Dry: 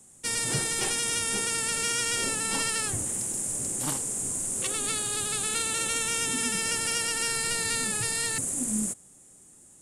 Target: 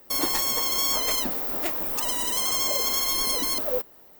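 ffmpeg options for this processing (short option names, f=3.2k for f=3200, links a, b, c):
-af "asetrate=103194,aresample=44100,equalizer=f=5.4k:t=o:w=0.29:g=2.5,volume=4.5dB"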